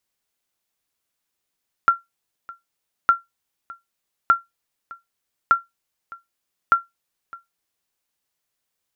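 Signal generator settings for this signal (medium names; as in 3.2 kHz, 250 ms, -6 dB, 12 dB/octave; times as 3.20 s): sonar ping 1.37 kHz, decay 0.17 s, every 1.21 s, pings 5, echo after 0.61 s, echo -22.5 dB -6 dBFS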